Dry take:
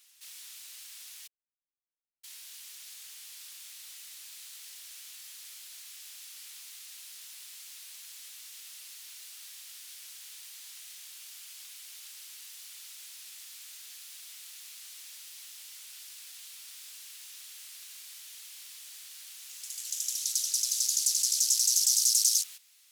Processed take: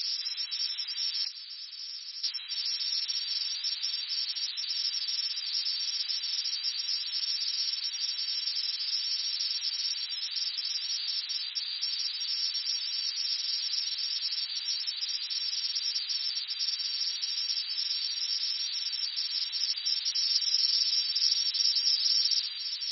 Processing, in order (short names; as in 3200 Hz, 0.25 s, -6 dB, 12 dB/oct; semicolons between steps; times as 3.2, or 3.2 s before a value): per-bin compression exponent 0.2; gain +2 dB; MP3 16 kbps 24000 Hz